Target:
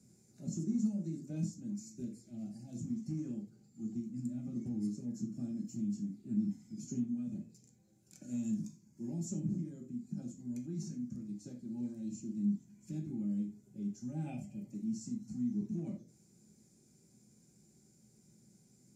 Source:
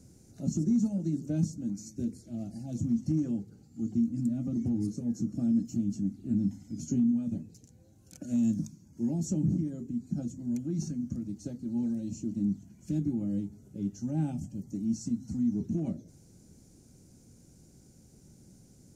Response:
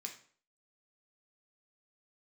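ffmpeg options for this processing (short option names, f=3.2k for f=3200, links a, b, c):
-filter_complex "[0:a]asettb=1/sr,asplit=3[a][b][c];[a]atrim=end=14.264[d];[b]atrim=start=14.26:end=14.74,asetpts=PTS-STARTPTS,afade=t=in:d=0.004:c=qsin,afade=t=out:st=0.476:d=0.004:c=qsin,equalizer=f=630:t=o:w=0.67:g=11,equalizer=f=2.5k:t=o:w=0.67:g=12,equalizer=f=6.3k:t=o:w=0.67:g=-5[e];[c]atrim=start=14.736[f];[d][e]acrossfade=d=0.004:c1=hsin:c2=qsin[g];[g][f]acrossfade=d=0.004:c1=qsin:c2=hsin[h];[1:a]atrim=start_sample=2205,atrim=end_sample=4410[i];[h][i]afir=irnorm=-1:irlink=0,volume=-4dB"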